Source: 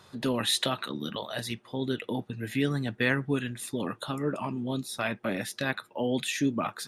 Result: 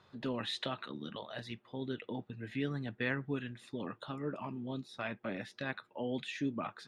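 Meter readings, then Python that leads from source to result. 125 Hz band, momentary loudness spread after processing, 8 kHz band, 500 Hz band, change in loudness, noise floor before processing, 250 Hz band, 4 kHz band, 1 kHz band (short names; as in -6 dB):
-8.5 dB, 7 LU, under -20 dB, -8.5 dB, -9.0 dB, -59 dBFS, -8.5 dB, -11.0 dB, -8.5 dB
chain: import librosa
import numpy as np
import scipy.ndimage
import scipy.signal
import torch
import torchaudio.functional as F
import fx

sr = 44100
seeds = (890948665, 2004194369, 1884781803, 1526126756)

y = scipy.signal.sosfilt(scipy.signal.butter(2, 3800.0, 'lowpass', fs=sr, output='sos'), x)
y = y * librosa.db_to_amplitude(-8.5)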